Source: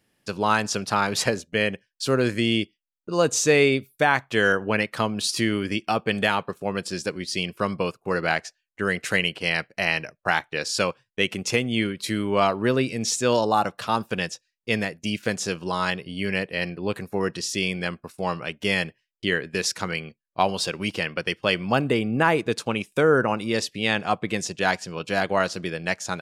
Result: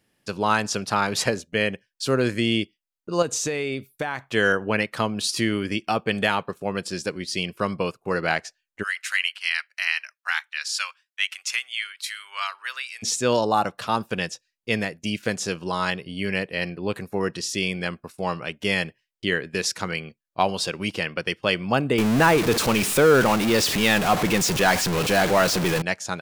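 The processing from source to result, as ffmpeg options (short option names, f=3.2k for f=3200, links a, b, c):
-filter_complex "[0:a]asettb=1/sr,asplit=3[a][b][c];[a]atrim=end=3.224[d];[b]atrim=start=3.22:end=4.27,asetpts=PTS-STARTPTS,afade=t=in:d=0.004:c=qsin,afade=t=out:st=1.046:d=0.004:c=qsin,acompressor=threshold=-22dB:ratio=10:attack=3.2:release=140:knee=1:detection=peak[e];[c]atrim=start=4.266[f];[d][e]acrossfade=d=0.004:c1=hsin:c2=qsin[g];[g][f]acrossfade=d=0.004:c1=qsin:c2=hsin,asplit=3[h][i][j];[h]afade=t=out:st=8.82:d=0.02[k];[i]highpass=f=1.3k:w=0.5412,highpass=f=1.3k:w=1.3066,afade=t=in:st=8.82:d=0.02,afade=t=out:st=13.02:d=0.02[l];[j]afade=t=in:st=13.02:d=0.02[m];[k][l][m]amix=inputs=3:normalize=0,asettb=1/sr,asplit=3[n][o][p];[n]atrim=end=21.984[q];[o]atrim=start=21.98:end=25.82,asetpts=PTS-STARTPTS,afade=t=in:d=0.004:c=qsin,afade=t=out:st=3.836:d=0.004:c=qsin,aeval=exprs='val(0)+0.5*0.106*sgn(val(0))':c=same[r];[p]atrim=start=25.816[s];[q][r]acrossfade=d=0.004:c1=hsin:c2=qsin[t];[t][s]acrossfade=d=0.004:c1=qsin:c2=hsin"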